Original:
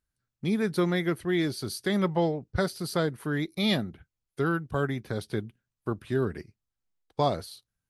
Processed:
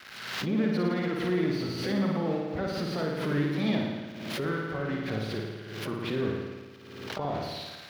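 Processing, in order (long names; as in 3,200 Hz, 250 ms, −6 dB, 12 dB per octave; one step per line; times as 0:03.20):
spike at every zero crossing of −19 dBFS
high-pass filter 62 Hz 6 dB per octave
mains-hum notches 60/120 Hz
noise gate −28 dBFS, range −10 dB
high-shelf EQ 6,700 Hz −10 dB
brickwall limiter −23 dBFS, peak gain reduction 10.5 dB
pitch-shifted copies added +5 semitones −10 dB
high-frequency loss of the air 320 metres
on a send: flutter between parallel walls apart 9.5 metres, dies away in 1.3 s
on the sum: background raised ahead of every attack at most 46 dB per second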